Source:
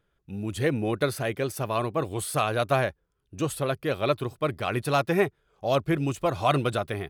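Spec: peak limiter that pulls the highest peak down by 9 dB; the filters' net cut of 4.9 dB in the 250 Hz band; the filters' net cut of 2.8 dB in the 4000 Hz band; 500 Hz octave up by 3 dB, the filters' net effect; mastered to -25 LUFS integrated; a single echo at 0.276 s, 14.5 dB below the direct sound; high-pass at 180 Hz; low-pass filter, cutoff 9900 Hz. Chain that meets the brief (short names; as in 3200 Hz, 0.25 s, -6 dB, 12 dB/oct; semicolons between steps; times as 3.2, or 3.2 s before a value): HPF 180 Hz; LPF 9900 Hz; bell 250 Hz -9 dB; bell 500 Hz +6 dB; bell 4000 Hz -3.5 dB; limiter -17.5 dBFS; echo 0.276 s -14.5 dB; gain +4.5 dB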